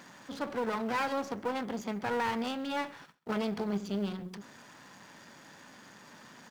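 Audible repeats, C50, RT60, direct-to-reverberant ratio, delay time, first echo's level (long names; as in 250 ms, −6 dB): 1, no reverb audible, no reverb audible, no reverb audible, 132 ms, −23.0 dB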